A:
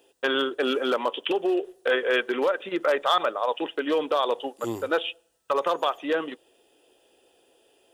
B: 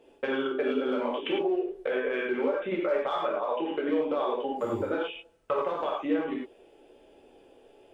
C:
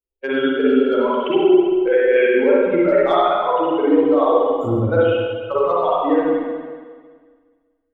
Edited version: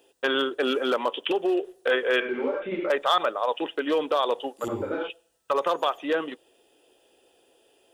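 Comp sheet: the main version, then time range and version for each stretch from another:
A
2.20–2.90 s: from B
4.68–5.10 s: from B
not used: C

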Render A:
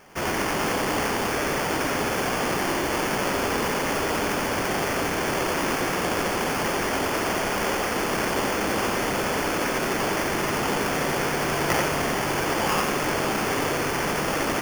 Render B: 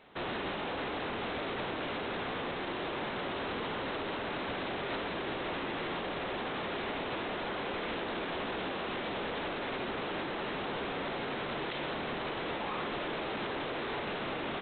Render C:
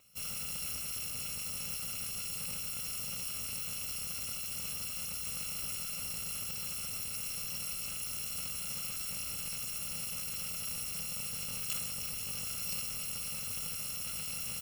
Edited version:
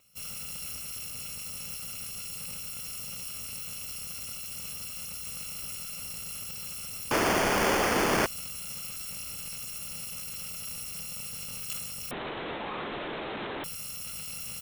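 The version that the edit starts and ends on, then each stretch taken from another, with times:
C
7.11–8.26 s: from A
12.11–13.64 s: from B

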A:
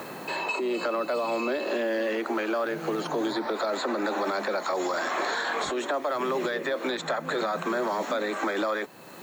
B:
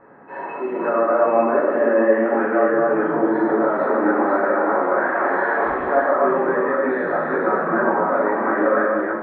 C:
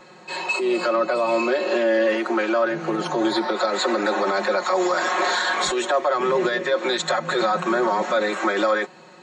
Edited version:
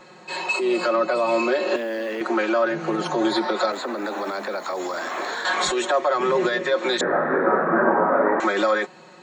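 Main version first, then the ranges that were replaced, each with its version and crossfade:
C
1.76–2.21 s: from A
3.72–5.45 s: from A
7.01–8.40 s: from B

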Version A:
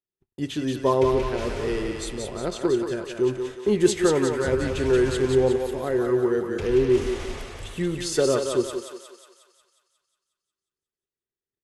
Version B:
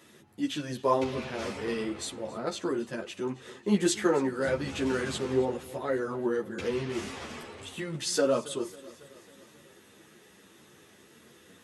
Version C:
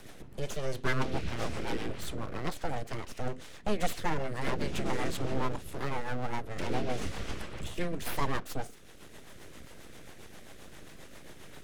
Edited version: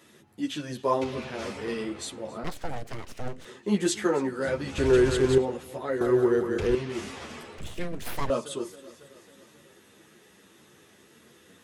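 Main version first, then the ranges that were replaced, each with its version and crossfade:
B
2.44–3.45 s: from C
4.78–5.38 s: from A
6.01–6.75 s: from A
7.58–8.30 s: from C

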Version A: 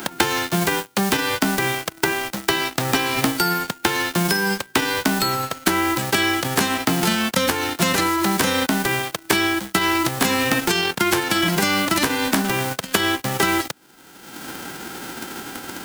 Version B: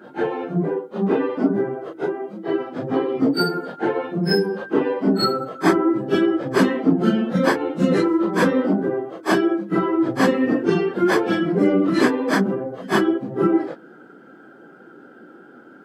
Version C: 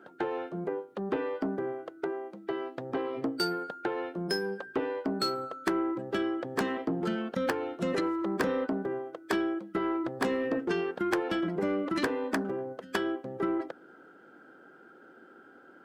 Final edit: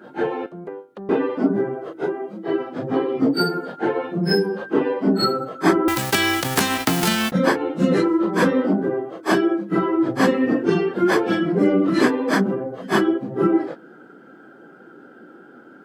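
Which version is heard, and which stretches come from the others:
B
0.46–1.09 s: from C
5.88–7.32 s: from A

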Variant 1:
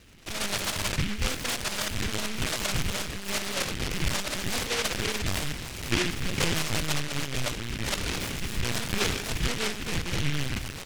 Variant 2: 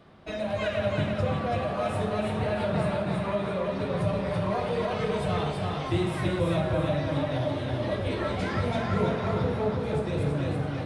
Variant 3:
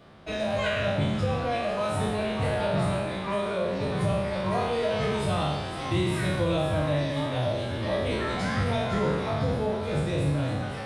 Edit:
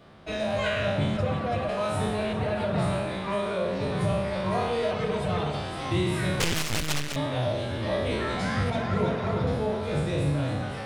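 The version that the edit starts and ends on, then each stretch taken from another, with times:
3
1.17–1.69 s: from 2
2.33–2.78 s: from 2
4.91–5.54 s: from 2
6.40–7.16 s: from 1
8.70–9.47 s: from 2

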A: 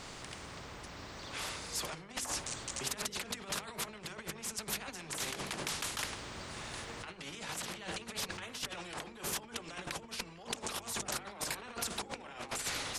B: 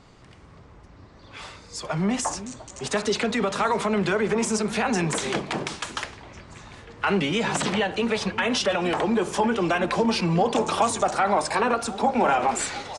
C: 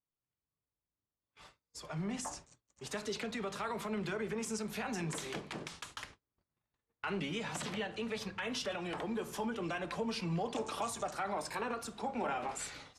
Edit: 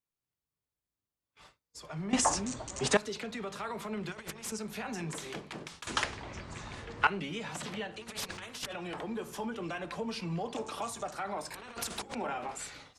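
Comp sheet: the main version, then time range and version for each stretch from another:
C
2.13–2.97 s: from B
4.12–4.52 s: from A
5.87–7.07 s: from B
7.99–8.70 s: from A, crossfade 0.06 s
11.54–12.15 s: from A

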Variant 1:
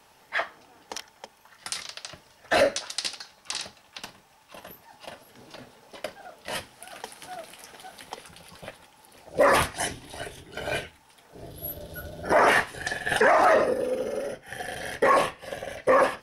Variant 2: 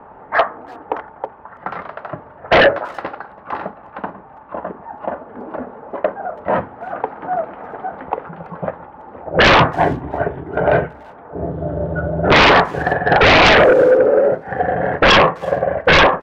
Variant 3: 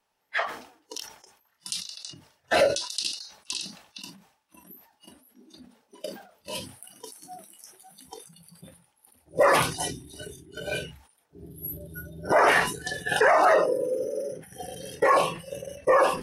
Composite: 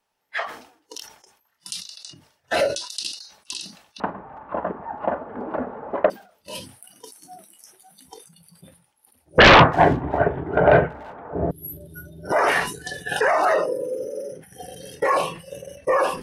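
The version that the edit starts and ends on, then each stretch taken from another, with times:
3
4.00–6.10 s: from 2
9.38–11.51 s: from 2
not used: 1

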